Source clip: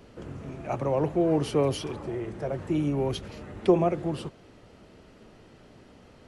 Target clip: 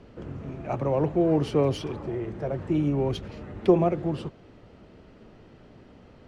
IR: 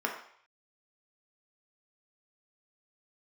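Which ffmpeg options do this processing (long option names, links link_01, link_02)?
-af "lowshelf=frequency=410:gain=3.5,adynamicsmooth=sensitivity=5:basefreq=5500" -ar 44100 -c:a libmp3lame -b:a 112k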